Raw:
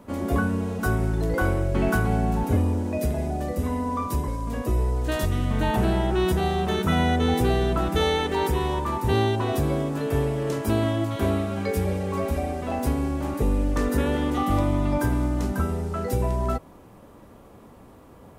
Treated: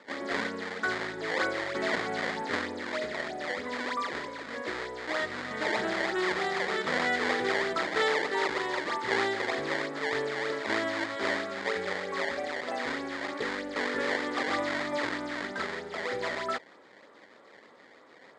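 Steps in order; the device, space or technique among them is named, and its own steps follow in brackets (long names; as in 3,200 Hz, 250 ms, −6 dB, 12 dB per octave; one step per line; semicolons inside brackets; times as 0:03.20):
circuit-bent sampling toy (sample-and-hold swept by an LFO 20×, swing 160% 3.2 Hz; loudspeaker in its box 520–6,000 Hz, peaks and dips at 720 Hz −5 dB, 1,000 Hz −4 dB, 1,900 Hz +9 dB, 2,700 Hz −9 dB, 5,800 Hz −9 dB)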